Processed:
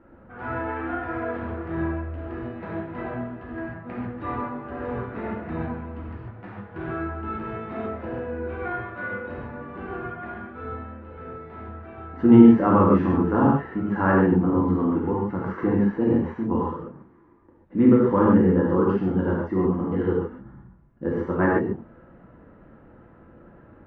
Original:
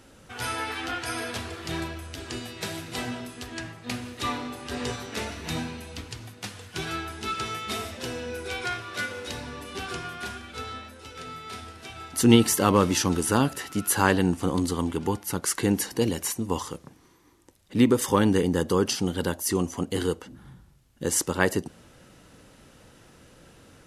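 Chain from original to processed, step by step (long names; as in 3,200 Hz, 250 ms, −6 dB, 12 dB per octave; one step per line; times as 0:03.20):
low-pass filter 1,600 Hz 24 dB per octave
parametric band 240 Hz +3.5 dB 1.4 octaves
reverb whose tail is shaped and stops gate 170 ms flat, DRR −5 dB
level −3.5 dB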